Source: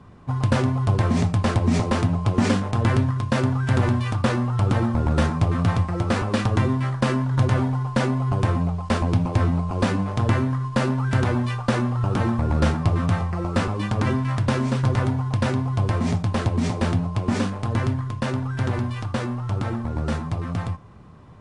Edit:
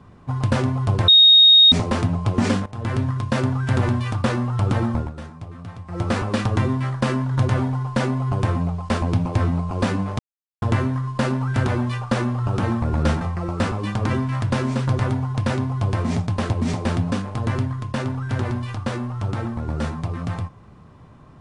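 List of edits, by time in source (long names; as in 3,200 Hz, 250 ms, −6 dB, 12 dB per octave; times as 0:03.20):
0:01.08–0:01.72: beep over 3,730 Hz −7.5 dBFS
0:02.66–0:03.12: fade in, from −17 dB
0:04.95–0:06.02: duck −15.5 dB, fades 0.17 s
0:10.19: splice in silence 0.43 s
0:12.78–0:13.17: remove
0:17.08–0:17.40: remove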